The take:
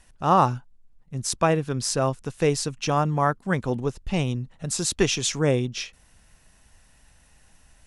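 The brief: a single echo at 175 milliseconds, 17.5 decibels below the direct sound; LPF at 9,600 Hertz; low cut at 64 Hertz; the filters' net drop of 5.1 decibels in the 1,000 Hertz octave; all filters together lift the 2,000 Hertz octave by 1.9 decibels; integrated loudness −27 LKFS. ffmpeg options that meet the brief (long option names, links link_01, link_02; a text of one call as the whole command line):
ffmpeg -i in.wav -af "highpass=64,lowpass=9600,equalizer=frequency=1000:width_type=o:gain=-8,equalizer=frequency=2000:width_type=o:gain=5,aecho=1:1:175:0.133,volume=-1dB" out.wav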